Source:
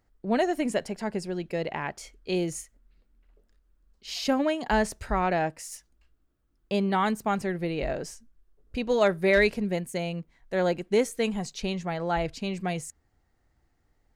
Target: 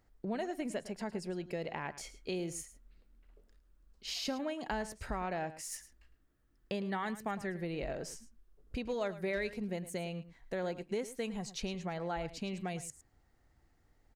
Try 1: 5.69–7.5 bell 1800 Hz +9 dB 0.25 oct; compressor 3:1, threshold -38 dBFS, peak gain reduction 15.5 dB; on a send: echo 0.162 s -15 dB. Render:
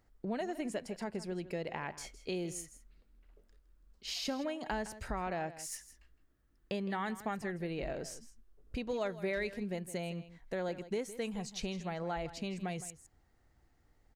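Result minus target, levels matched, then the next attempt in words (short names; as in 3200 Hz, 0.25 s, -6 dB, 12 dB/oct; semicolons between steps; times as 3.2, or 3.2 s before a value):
echo 54 ms late
5.69–7.5 bell 1800 Hz +9 dB 0.25 oct; compressor 3:1, threshold -38 dBFS, peak gain reduction 15.5 dB; on a send: echo 0.108 s -15 dB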